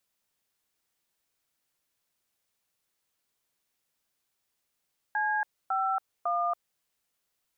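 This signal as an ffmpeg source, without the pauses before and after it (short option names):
-f lavfi -i "aevalsrc='0.0398*clip(min(mod(t,0.552),0.281-mod(t,0.552))/0.002,0,1)*(eq(floor(t/0.552),0)*(sin(2*PI*852*mod(t,0.552))+sin(2*PI*1633*mod(t,0.552)))+eq(floor(t/0.552),1)*(sin(2*PI*770*mod(t,0.552))+sin(2*PI*1336*mod(t,0.552)))+eq(floor(t/0.552),2)*(sin(2*PI*697*mod(t,0.552))+sin(2*PI*1209*mod(t,0.552))))':d=1.656:s=44100"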